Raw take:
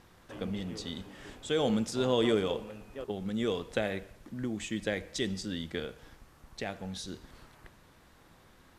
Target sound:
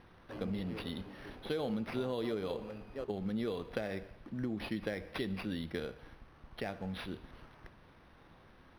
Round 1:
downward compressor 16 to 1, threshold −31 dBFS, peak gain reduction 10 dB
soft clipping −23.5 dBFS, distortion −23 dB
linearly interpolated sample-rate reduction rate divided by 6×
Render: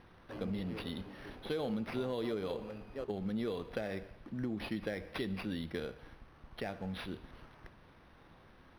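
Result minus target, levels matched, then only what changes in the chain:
soft clipping: distortion +10 dB
change: soft clipping −17 dBFS, distortion −33 dB

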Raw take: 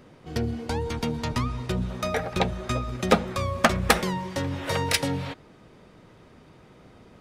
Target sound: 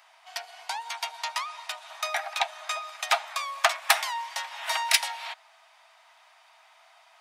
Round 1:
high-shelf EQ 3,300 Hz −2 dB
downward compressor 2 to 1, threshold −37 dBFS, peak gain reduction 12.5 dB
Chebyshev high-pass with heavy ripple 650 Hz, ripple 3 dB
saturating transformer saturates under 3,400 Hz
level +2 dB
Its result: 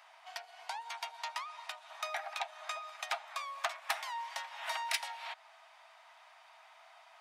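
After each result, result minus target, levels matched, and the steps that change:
downward compressor: peak gain reduction +12.5 dB; 8,000 Hz band −3.0 dB
remove: downward compressor 2 to 1, threshold −37 dBFS, peak gain reduction 12.5 dB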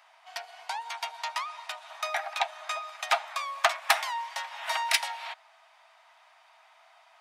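8,000 Hz band −3.0 dB
change: high-shelf EQ 3,300 Hz +4.5 dB

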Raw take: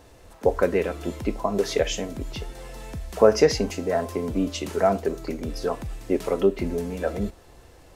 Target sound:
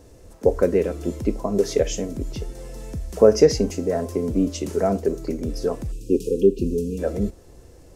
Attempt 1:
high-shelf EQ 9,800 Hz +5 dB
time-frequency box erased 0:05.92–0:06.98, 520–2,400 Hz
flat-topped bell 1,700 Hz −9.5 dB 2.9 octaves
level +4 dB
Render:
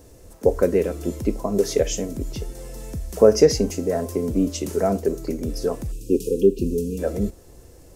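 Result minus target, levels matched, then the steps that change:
8,000 Hz band +3.0 dB
change: high-shelf EQ 9,800 Hz −6 dB

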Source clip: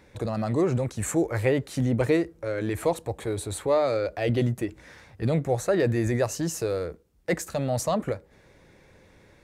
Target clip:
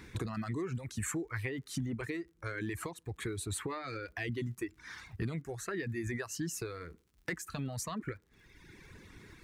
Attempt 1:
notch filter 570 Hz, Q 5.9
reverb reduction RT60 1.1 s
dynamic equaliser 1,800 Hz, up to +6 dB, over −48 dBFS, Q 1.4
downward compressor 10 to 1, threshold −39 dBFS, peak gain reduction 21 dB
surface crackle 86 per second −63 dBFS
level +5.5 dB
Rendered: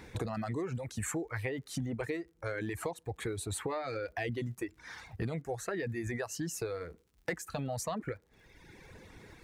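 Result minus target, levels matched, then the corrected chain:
500 Hz band +3.5 dB
notch filter 570 Hz, Q 5.9
reverb reduction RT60 1.1 s
dynamic equaliser 1,800 Hz, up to +6 dB, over −48 dBFS, Q 1.4
downward compressor 10 to 1, threshold −39 dBFS, peak gain reduction 21 dB
flat-topped bell 640 Hz −9 dB 1.1 octaves
surface crackle 86 per second −63 dBFS
level +5.5 dB

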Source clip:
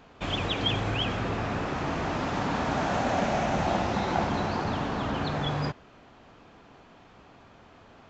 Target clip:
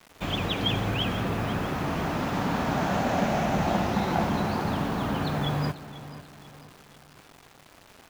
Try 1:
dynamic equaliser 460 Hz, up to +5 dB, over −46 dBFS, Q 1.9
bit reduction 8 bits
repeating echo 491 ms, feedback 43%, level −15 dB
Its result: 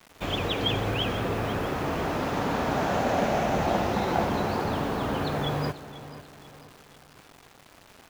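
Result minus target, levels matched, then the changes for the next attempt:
500 Hz band +3.0 dB
change: dynamic equaliser 180 Hz, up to +5 dB, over −46 dBFS, Q 1.9

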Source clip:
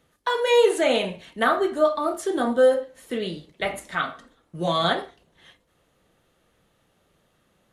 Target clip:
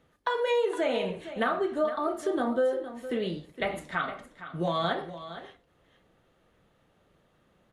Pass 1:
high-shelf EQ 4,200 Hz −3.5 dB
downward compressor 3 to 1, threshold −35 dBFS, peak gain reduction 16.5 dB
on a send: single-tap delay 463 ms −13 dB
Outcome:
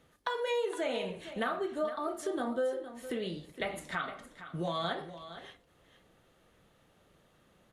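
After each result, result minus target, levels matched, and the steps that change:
8,000 Hz band +7.0 dB; downward compressor: peak gain reduction +6 dB
change: high-shelf EQ 4,200 Hz −11.5 dB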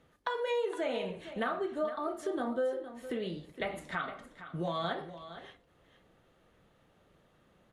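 downward compressor: peak gain reduction +6 dB
change: downward compressor 3 to 1, threshold −26 dBFS, peak gain reduction 10.5 dB

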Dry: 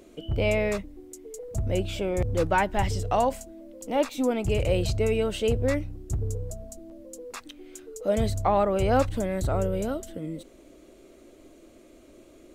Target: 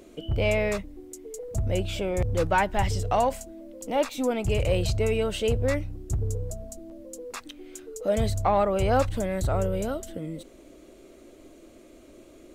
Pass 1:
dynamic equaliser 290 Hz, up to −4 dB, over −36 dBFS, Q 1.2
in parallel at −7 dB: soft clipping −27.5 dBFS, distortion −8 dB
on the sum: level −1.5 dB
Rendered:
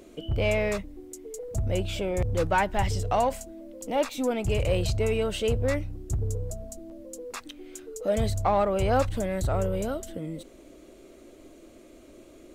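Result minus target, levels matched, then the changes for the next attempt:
soft clipping: distortion +8 dB
change: soft clipping −19.5 dBFS, distortion −16 dB

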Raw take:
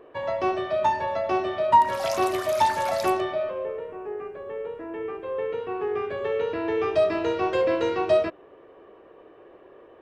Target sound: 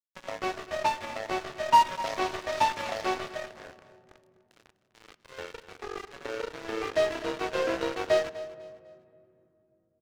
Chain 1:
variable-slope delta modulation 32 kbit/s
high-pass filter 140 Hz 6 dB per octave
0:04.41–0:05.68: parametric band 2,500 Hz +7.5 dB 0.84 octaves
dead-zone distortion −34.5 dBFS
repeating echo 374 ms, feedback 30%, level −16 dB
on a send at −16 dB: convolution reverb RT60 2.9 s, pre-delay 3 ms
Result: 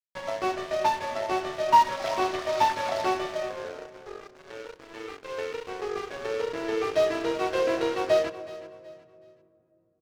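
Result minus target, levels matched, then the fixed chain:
echo 124 ms late; dead-zone distortion: distortion −7 dB
variable-slope delta modulation 32 kbit/s
high-pass filter 140 Hz 6 dB per octave
0:04.41–0:05.68: parametric band 2,500 Hz +7.5 dB 0.84 octaves
dead-zone distortion −27 dBFS
repeating echo 250 ms, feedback 30%, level −16 dB
on a send at −16 dB: convolution reverb RT60 2.9 s, pre-delay 3 ms

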